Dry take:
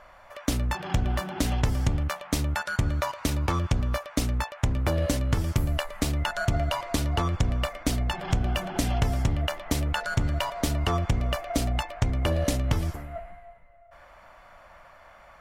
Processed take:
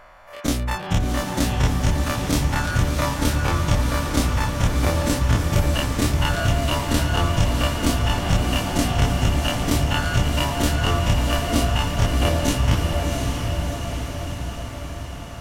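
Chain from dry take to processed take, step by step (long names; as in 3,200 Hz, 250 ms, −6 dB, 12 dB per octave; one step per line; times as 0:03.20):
every bin's largest magnitude spread in time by 60 ms
on a send: feedback delay with all-pass diffusion 711 ms, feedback 64%, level −4 dB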